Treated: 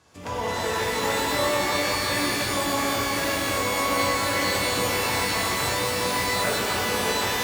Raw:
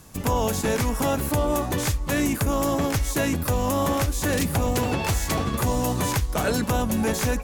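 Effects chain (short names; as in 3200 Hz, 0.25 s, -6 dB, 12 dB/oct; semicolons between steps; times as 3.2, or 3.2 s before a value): BPF 120–4900 Hz; bell 170 Hz -12.5 dB 1.3 oct; shimmer reverb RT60 3.4 s, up +12 st, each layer -2 dB, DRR -6.5 dB; gain -6.5 dB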